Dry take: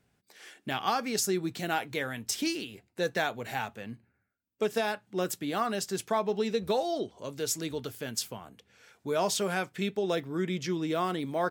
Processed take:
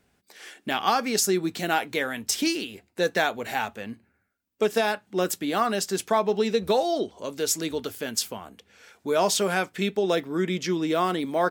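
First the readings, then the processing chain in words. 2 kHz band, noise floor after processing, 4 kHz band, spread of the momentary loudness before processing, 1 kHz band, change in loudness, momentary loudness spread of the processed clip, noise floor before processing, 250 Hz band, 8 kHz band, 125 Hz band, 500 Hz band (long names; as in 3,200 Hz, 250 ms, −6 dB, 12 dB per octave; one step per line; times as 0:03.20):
+6.0 dB, −70 dBFS, +6.0 dB, 9 LU, +6.0 dB, +5.5 dB, 9 LU, −75 dBFS, +5.0 dB, +6.0 dB, +2.5 dB, +6.0 dB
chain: parametric band 130 Hz −12.5 dB 0.42 octaves
level +6 dB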